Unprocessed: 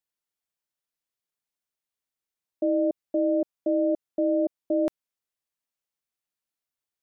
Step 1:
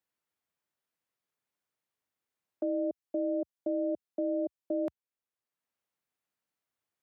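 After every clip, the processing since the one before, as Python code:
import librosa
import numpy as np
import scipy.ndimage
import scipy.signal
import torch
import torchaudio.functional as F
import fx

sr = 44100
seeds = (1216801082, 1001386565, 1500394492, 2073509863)

y = scipy.signal.sosfilt(scipy.signal.butter(4, 72.0, 'highpass', fs=sr, output='sos'), x)
y = fx.band_squash(y, sr, depth_pct=40)
y = y * librosa.db_to_amplitude(-7.5)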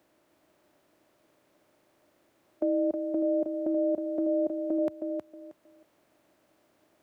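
y = fx.bin_compress(x, sr, power=0.6)
y = fx.echo_feedback(y, sr, ms=316, feedback_pct=22, wet_db=-6)
y = y * librosa.db_to_amplitude(4.0)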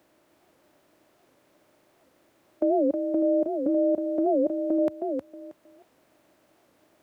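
y = fx.record_warp(x, sr, rpm=78.0, depth_cents=250.0)
y = y * librosa.db_to_amplitude(4.0)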